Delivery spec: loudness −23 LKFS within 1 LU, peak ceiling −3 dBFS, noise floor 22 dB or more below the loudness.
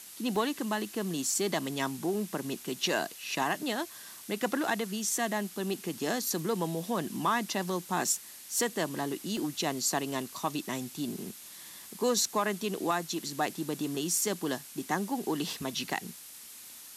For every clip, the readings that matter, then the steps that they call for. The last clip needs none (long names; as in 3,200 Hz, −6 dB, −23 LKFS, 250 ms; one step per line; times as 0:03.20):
number of dropouts 2; longest dropout 1.4 ms; background noise floor −48 dBFS; target noise floor −54 dBFS; integrated loudness −32.0 LKFS; sample peak −16.5 dBFS; target loudness −23.0 LKFS
→ repair the gap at 0:00.36/0:09.37, 1.4 ms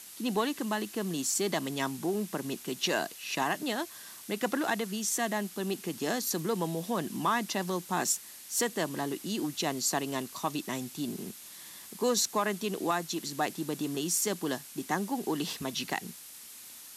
number of dropouts 0; background noise floor −48 dBFS; target noise floor −54 dBFS
→ noise reduction from a noise print 6 dB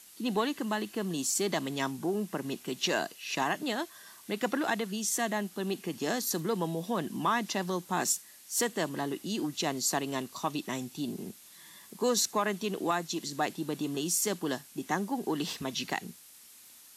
background noise floor −54 dBFS; integrated loudness −32.0 LKFS; sample peak −16.5 dBFS; target loudness −23.0 LKFS
→ level +9 dB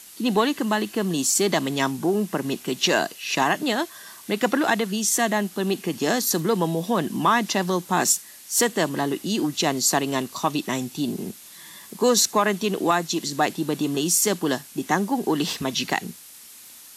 integrated loudness −23.0 LKFS; sample peak −7.5 dBFS; background noise floor −45 dBFS